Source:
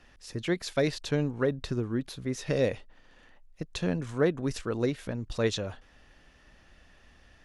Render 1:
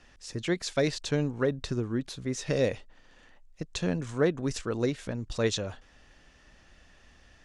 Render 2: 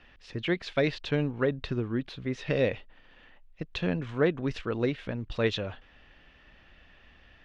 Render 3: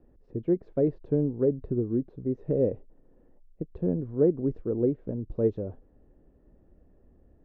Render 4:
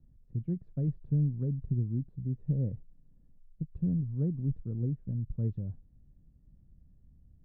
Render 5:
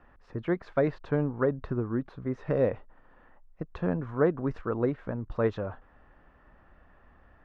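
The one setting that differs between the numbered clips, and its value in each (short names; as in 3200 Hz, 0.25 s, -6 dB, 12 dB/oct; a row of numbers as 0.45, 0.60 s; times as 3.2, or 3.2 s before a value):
synth low-pass, frequency: 7800, 3000, 410, 150, 1200 Hz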